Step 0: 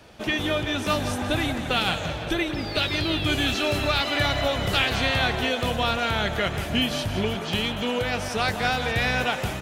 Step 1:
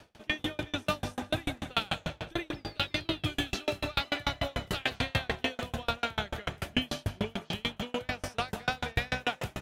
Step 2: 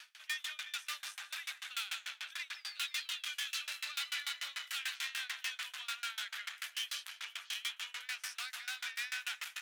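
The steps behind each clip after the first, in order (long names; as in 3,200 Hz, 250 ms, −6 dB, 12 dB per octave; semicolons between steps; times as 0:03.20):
tremolo with a ramp in dB decaying 6.8 Hz, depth 36 dB
tube saturation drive 39 dB, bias 0.45; reversed playback; upward compression, threshold −50 dBFS; reversed playback; high-pass filter 1,500 Hz 24 dB per octave; level +7 dB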